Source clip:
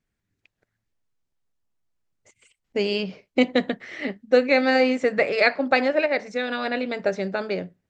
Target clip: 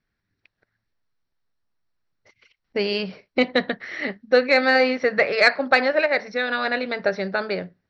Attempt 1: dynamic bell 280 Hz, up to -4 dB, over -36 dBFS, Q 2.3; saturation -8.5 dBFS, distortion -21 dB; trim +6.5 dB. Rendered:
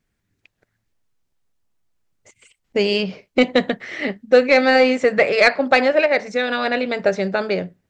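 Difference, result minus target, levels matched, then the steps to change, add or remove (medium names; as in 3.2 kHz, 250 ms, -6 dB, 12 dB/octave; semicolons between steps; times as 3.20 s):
8 kHz band +4.5 dB
add after dynamic bell: rippled Chebyshev low-pass 5.8 kHz, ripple 6 dB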